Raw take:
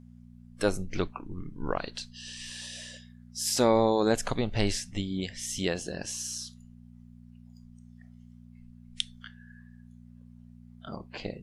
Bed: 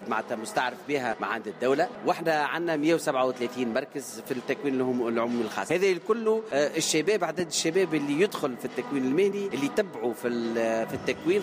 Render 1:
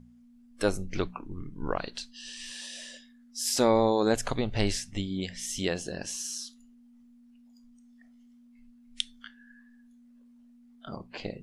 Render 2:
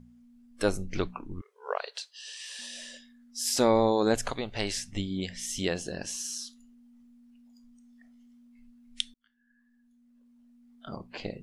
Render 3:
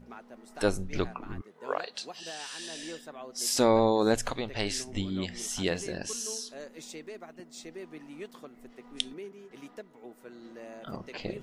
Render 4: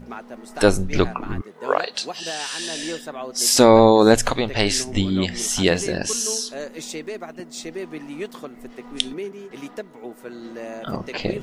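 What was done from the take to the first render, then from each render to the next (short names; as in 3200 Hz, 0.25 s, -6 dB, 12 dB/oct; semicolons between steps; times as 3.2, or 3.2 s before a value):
de-hum 60 Hz, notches 3
1.41–2.59 brick-wall FIR high-pass 400 Hz; 4.3–4.77 low shelf 310 Hz -10.5 dB; 9.14–10.93 fade in
add bed -19 dB
gain +11.5 dB; limiter -1 dBFS, peak gain reduction 3 dB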